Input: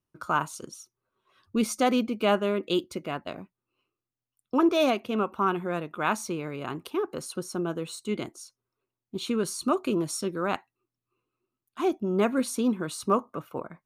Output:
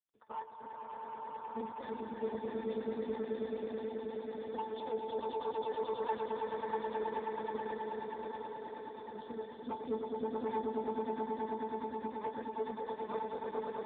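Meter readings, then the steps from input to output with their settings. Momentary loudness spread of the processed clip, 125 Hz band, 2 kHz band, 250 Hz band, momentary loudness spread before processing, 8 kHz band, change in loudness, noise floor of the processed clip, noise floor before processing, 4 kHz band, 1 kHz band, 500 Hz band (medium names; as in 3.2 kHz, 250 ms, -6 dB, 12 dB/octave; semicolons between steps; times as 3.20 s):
8 LU, -17.5 dB, -15.0 dB, -14.5 dB, 13 LU, under -40 dB, -11.0 dB, -49 dBFS, under -85 dBFS, -18.0 dB, -7.0 dB, -7.5 dB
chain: high-pass 390 Hz 12 dB/octave; harmonic-percussive split harmonic -12 dB; pitch-class resonator A, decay 0.18 s; saturation -39 dBFS, distortion -14 dB; echo with a slow build-up 107 ms, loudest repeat 8, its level -4.5 dB; trim +7.5 dB; AMR-NB 4.75 kbps 8 kHz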